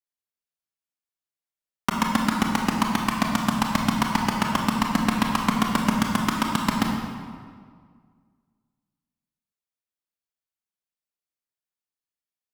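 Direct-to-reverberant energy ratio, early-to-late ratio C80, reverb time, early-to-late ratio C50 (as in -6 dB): 0.5 dB, 3.5 dB, 1.9 s, 2.0 dB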